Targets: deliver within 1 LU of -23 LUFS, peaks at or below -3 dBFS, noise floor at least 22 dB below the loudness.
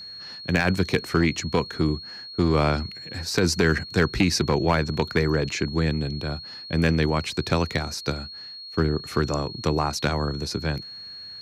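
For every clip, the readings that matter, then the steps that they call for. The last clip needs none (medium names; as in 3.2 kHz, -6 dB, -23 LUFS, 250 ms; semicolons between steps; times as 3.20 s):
clipped samples 0.5%; clipping level -12.0 dBFS; steady tone 4.3 kHz; tone level -37 dBFS; loudness -24.5 LUFS; peak level -12.0 dBFS; loudness target -23.0 LUFS
-> clip repair -12 dBFS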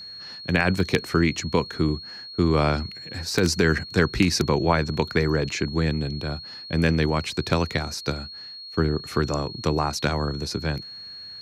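clipped samples 0.0%; steady tone 4.3 kHz; tone level -37 dBFS
-> band-stop 4.3 kHz, Q 30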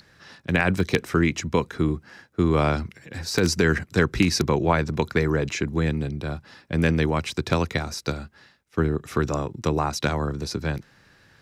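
steady tone not found; loudness -24.5 LUFS; peak level -3.0 dBFS; loudness target -23.0 LUFS
-> trim +1.5 dB; peak limiter -3 dBFS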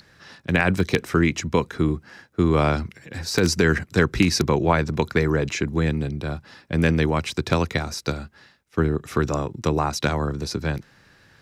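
loudness -23.0 LUFS; peak level -3.0 dBFS; noise floor -57 dBFS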